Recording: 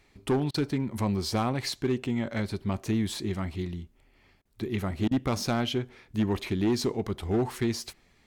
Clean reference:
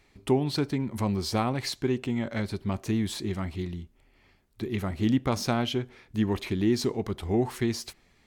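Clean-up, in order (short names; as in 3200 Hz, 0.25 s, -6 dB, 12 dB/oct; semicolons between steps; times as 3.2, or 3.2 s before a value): clip repair -20 dBFS; interpolate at 0.51/4.42/5.08, 31 ms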